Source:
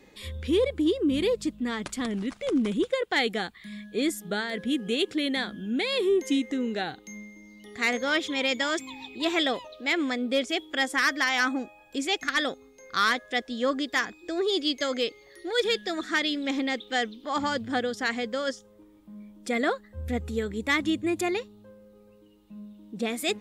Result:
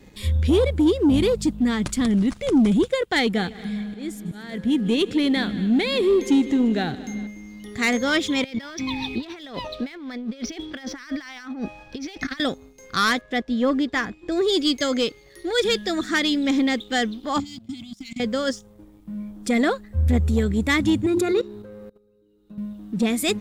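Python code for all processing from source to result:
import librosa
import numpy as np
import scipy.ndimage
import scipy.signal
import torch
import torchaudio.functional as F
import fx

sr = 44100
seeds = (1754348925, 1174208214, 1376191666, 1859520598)

y = fx.chain(x, sr, fx.auto_swell(attack_ms=497.0),
    fx.high_shelf(hz=5800.0, db=-8.0),
    fx.echo_heads(ms=77, heads='second and third', feedback_pct=59, wet_db=-19.0), at=(3.2, 7.27))
y = fx.chain(y, sr, fx.over_compress(threshold_db=-38.0, ratio=-1.0),
    fx.cheby_ripple(hz=6000.0, ripple_db=3), at=(8.44, 12.4))
y = fx.chain(y, sr, fx.lowpass(hz=7800.0, slope=12),
    fx.high_shelf(hz=3800.0, db=-12.0), at=(13.21, 14.32))
y = fx.chain(y, sr, fx.peak_eq(hz=130.0, db=-13.0, octaves=1.5),
    fx.level_steps(step_db=19),
    fx.brickwall_bandstop(low_hz=330.0, high_hz=2000.0), at=(17.4, 18.2))
y = fx.chain(y, sr, fx.hum_notches(base_hz=50, count=7),
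    fx.level_steps(step_db=18),
    fx.small_body(hz=(420.0, 1400.0, 3800.0), ring_ms=20, db=15), at=(21.06, 22.58))
y = fx.bass_treble(y, sr, bass_db=13, treble_db=4)
y = fx.leveller(y, sr, passes=1)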